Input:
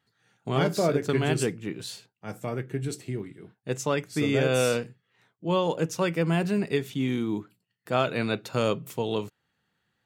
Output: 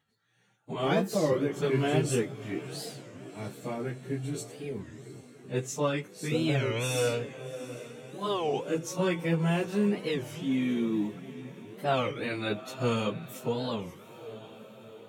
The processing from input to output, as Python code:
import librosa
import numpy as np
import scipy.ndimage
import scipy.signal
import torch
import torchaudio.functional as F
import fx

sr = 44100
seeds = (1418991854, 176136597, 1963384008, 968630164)

p1 = fx.peak_eq(x, sr, hz=1500.0, db=-2.5, octaves=0.39)
p2 = fx.notch(p1, sr, hz=4800.0, q=8.9)
p3 = p2 + fx.echo_diffused(p2, sr, ms=488, feedback_pct=59, wet_db=-15.5, dry=0)
p4 = fx.stretch_vocoder_free(p3, sr, factor=1.5)
y = fx.record_warp(p4, sr, rpm=33.33, depth_cents=250.0)